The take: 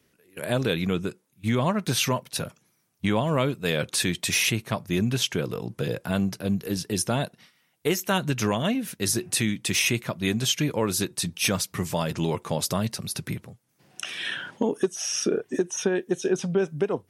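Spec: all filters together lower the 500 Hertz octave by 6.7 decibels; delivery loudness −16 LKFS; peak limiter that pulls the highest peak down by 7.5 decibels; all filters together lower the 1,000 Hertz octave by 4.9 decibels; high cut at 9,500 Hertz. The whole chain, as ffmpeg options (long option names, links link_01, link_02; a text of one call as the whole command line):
ffmpeg -i in.wav -af "lowpass=9500,equalizer=frequency=500:width_type=o:gain=-8.5,equalizer=frequency=1000:width_type=o:gain=-3.5,volume=14dB,alimiter=limit=-4.5dB:level=0:latency=1" out.wav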